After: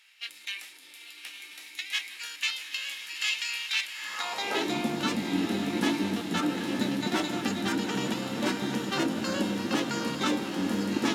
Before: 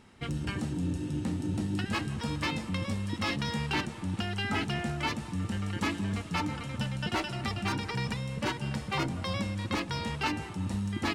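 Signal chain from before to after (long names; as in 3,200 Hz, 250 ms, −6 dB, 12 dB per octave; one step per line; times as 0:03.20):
feedback delay with all-pass diffusion 913 ms, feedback 60%, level −5.5 dB
formants moved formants +5 semitones
high-pass filter sweep 2,400 Hz → 250 Hz, 0:03.92–0:04.78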